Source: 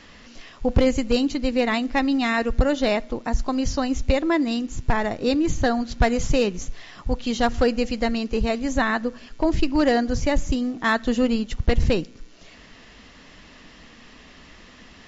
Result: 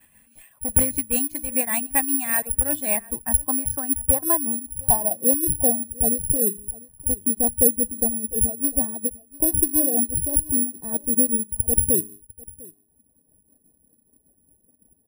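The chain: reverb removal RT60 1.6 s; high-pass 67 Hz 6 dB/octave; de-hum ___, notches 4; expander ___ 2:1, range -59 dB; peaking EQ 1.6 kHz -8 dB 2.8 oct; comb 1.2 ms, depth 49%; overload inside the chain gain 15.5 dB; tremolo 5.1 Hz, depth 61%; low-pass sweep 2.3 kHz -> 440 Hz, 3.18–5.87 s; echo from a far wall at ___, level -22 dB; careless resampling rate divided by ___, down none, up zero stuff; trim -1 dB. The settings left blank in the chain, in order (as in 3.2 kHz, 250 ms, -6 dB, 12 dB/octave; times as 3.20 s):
101.6 Hz, -39 dBFS, 120 m, 4×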